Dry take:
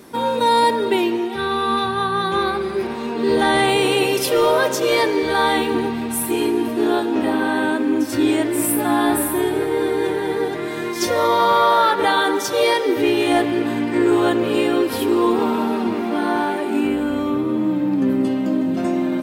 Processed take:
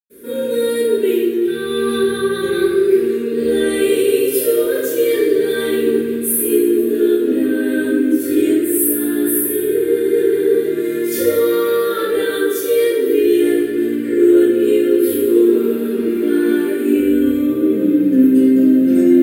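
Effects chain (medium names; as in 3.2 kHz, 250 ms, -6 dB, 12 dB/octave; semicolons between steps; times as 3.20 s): FFT filter 210 Hz 0 dB, 450 Hz +13 dB, 820 Hz -26 dB, 1.5 kHz 0 dB, 2.4 kHz -2 dB, 3.5 kHz -2 dB, 5.5 kHz -7 dB, 12 kHz +15 dB; level rider; reverberation RT60 0.90 s, pre-delay 98 ms, DRR -60 dB; trim +1 dB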